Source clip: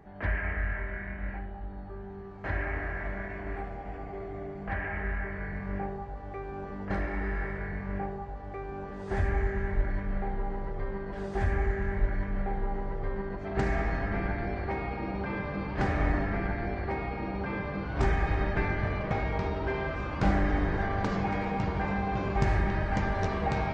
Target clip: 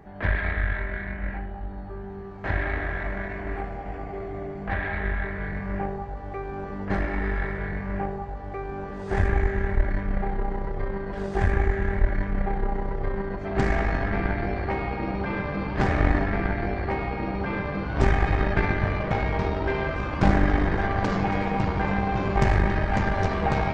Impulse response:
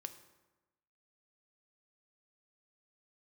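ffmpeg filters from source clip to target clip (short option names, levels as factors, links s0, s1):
-af "aeval=exprs='0.251*(cos(1*acos(clip(val(0)/0.251,-1,1)))-cos(1*PI/2))+0.0398*(cos(4*acos(clip(val(0)/0.251,-1,1)))-cos(4*PI/2))':c=same,volume=1.78"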